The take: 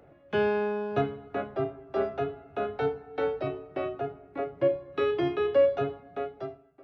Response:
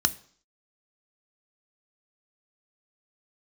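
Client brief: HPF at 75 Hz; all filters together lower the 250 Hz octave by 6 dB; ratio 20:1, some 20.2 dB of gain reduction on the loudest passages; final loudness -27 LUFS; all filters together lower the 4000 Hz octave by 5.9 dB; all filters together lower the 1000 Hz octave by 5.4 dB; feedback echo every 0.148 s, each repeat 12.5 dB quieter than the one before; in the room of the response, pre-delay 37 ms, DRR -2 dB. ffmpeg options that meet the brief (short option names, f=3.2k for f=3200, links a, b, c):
-filter_complex "[0:a]highpass=75,equalizer=f=250:t=o:g=-8.5,equalizer=f=1k:t=o:g=-7.5,equalizer=f=4k:t=o:g=-8,acompressor=threshold=-41dB:ratio=20,aecho=1:1:148|296|444:0.237|0.0569|0.0137,asplit=2[a][b];[1:a]atrim=start_sample=2205,adelay=37[c];[b][c]afir=irnorm=-1:irlink=0,volume=-7.5dB[d];[a][d]amix=inputs=2:normalize=0,volume=15dB"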